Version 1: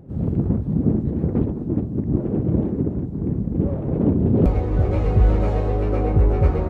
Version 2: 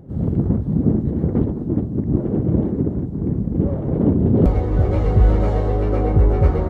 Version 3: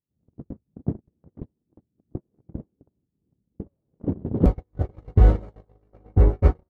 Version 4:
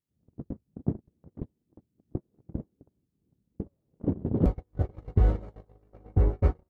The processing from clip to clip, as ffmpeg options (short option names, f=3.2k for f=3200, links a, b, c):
-af "bandreject=f=2.5k:w=8.4,volume=2dB"
-af "agate=range=-53dB:threshold=-12dB:ratio=16:detection=peak"
-af "acompressor=threshold=-23dB:ratio=2"